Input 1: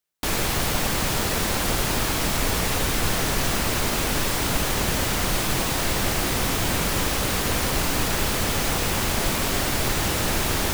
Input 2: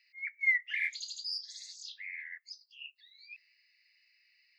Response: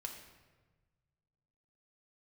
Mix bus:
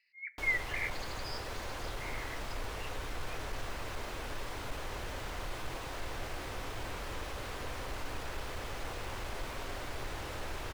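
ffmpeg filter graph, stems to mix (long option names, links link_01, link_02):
-filter_complex "[0:a]equalizer=frequency=190:width_type=o:width=1.1:gain=-11.5,asoftclip=type=tanh:threshold=-18dB,adelay=150,volume=-14dB,asplit=2[link_01][link_02];[link_02]volume=-6.5dB[link_03];[1:a]volume=-3dB,asplit=2[link_04][link_05];[link_05]volume=-8.5dB[link_06];[2:a]atrim=start_sample=2205[link_07];[link_03][link_06]amix=inputs=2:normalize=0[link_08];[link_08][link_07]afir=irnorm=-1:irlink=0[link_09];[link_01][link_04][link_09]amix=inputs=3:normalize=0,lowpass=frequency=2100:poles=1"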